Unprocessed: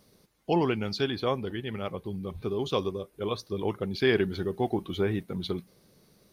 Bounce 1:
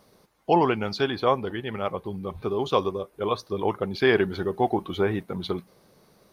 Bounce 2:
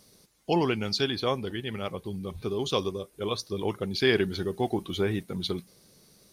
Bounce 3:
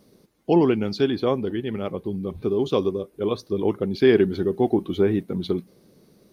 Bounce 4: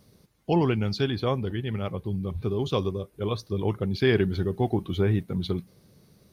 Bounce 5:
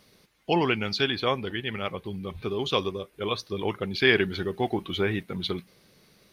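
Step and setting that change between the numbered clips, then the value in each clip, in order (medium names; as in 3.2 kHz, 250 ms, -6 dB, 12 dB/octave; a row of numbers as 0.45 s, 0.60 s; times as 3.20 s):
peaking EQ, frequency: 920 Hz, 7.6 kHz, 300 Hz, 97 Hz, 2.4 kHz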